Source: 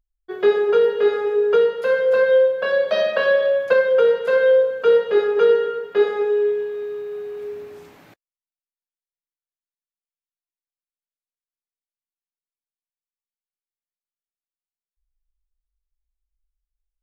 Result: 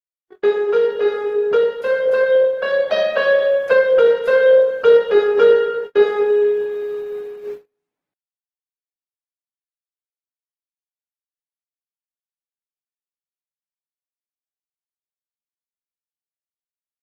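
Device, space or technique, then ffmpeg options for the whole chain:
video call: -af "highpass=130,dynaudnorm=f=390:g=17:m=6.5dB,agate=range=-42dB:threshold=-27dB:ratio=16:detection=peak" -ar 48000 -c:a libopus -b:a 16k

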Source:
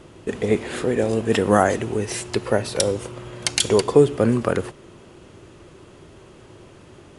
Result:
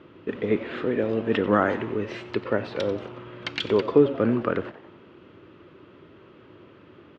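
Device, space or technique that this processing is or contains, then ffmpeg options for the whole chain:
frequency-shifting delay pedal into a guitar cabinet: -filter_complex "[0:a]asplit=5[a][b][c][d][e];[b]adelay=91,afreqshift=120,volume=-16dB[f];[c]adelay=182,afreqshift=240,volume=-22.2dB[g];[d]adelay=273,afreqshift=360,volume=-28.4dB[h];[e]adelay=364,afreqshift=480,volume=-34.6dB[i];[a][f][g][h][i]amix=inputs=5:normalize=0,highpass=110,equalizer=f=140:t=q:w=4:g=-3,equalizer=f=290:t=q:w=4:g=4,equalizer=f=750:t=q:w=4:g=-7,equalizer=f=1.3k:t=q:w=4:g=4,lowpass=f=3.4k:w=0.5412,lowpass=f=3.4k:w=1.3066,volume=-4dB"

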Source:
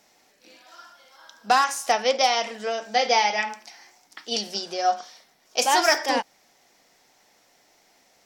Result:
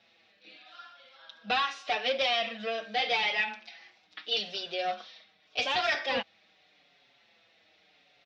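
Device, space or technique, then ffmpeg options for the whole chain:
barber-pole flanger into a guitar amplifier: -filter_complex "[0:a]asplit=2[a][b];[b]adelay=5.5,afreqshift=-0.82[c];[a][c]amix=inputs=2:normalize=1,asoftclip=type=tanh:threshold=-22dB,highpass=78,equalizer=f=94:t=q:w=4:g=4,equalizer=f=270:t=q:w=4:g=-4,equalizer=f=380:t=q:w=4:g=-5,equalizer=f=920:t=q:w=4:g=-9,equalizer=f=2.6k:t=q:w=4:g=7,equalizer=f=3.7k:t=q:w=4:g=9,lowpass=f=4k:w=0.5412,lowpass=f=4k:w=1.3066"

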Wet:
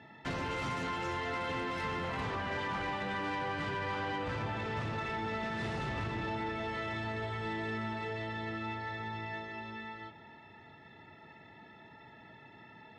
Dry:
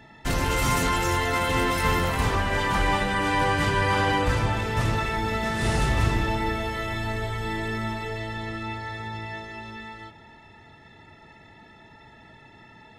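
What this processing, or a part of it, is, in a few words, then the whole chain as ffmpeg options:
AM radio: -af "highpass=110,lowpass=3.8k,acompressor=threshold=-27dB:ratio=6,asoftclip=type=tanh:threshold=-25dB,volume=-4dB"

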